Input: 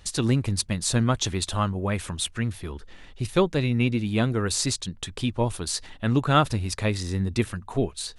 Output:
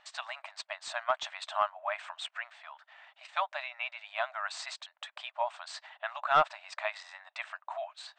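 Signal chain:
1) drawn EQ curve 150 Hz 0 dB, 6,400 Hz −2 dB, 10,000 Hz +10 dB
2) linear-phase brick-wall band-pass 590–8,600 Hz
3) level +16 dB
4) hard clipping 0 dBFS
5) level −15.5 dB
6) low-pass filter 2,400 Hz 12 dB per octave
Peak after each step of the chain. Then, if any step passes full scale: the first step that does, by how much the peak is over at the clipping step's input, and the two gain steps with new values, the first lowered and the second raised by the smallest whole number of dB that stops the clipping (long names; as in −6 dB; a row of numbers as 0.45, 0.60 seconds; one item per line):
−7.5, −9.0, +7.0, 0.0, −15.5, −15.0 dBFS
step 3, 7.0 dB
step 3 +9 dB, step 5 −8.5 dB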